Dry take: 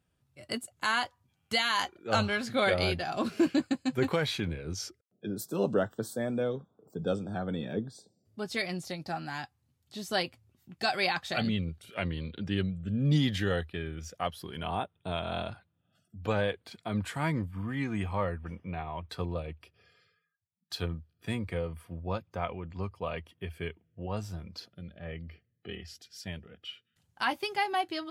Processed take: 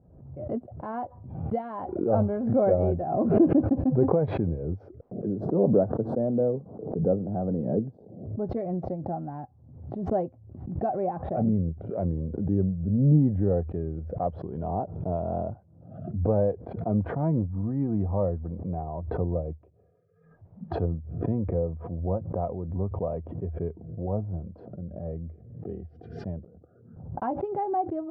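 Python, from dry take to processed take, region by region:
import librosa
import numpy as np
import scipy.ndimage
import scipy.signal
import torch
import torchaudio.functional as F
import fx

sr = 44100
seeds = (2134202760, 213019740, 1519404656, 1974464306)

y = fx.chain(x, sr, fx.lowpass(hz=4200.0, slope=12),
    fx.high_shelf(hz=2900.0, db=-11.0), at=(10.89, 13.57))
y = fx.chain(y, sr, fx.steep_lowpass(hz=1600.0, slope=96),
    fx.over_compress(threshold_db=-57.0, ratio=-0.5), at=(26.44, 27.22))
y = scipy.signal.sosfilt(scipy.signal.cheby1(3, 1.0, 670.0, 'lowpass', fs=sr, output='sos'), y)
y = fx.pre_swell(y, sr, db_per_s=61.0)
y = F.gain(torch.from_numpy(y), 6.5).numpy()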